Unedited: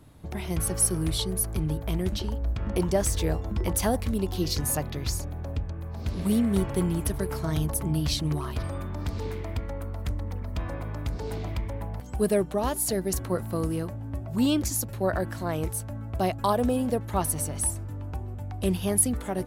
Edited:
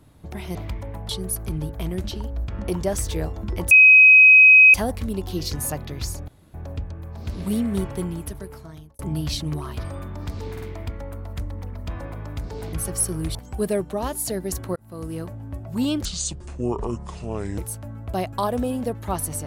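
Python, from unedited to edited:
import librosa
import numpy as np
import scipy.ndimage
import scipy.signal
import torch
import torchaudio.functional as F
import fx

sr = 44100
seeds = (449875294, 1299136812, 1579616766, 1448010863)

y = fx.edit(x, sr, fx.swap(start_s=0.55, length_s=0.62, other_s=11.42, other_length_s=0.54),
    fx.insert_tone(at_s=3.79, length_s=1.03, hz=2530.0, db=-7.0),
    fx.insert_room_tone(at_s=5.33, length_s=0.26),
    fx.fade_out_span(start_s=6.55, length_s=1.23),
    fx.stutter(start_s=9.31, slice_s=0.05, count=3),
    fx.fade_in_span(start_s=13.37, length_s=0.48),
    fx.speed_span(start_s=14.66, length_s=0.98, speed=0.64), tone=tone)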